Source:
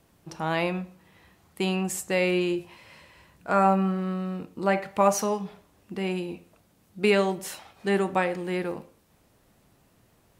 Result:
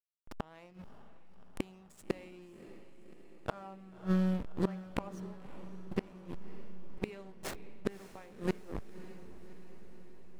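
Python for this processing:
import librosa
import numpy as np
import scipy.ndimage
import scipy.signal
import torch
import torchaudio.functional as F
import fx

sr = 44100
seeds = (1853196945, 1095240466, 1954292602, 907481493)

y = fx.backlash(x, sr, play_db=-26.5)
y = fx.gate_flip(y, sr, shuts_db=-24.0, range_db=-32)
y = fx.echo_diffused(y, sr, ms=588, feedback_pct=63, wet_db=-14.0)
y = y * 10.0 ** (4.5 / 20.0)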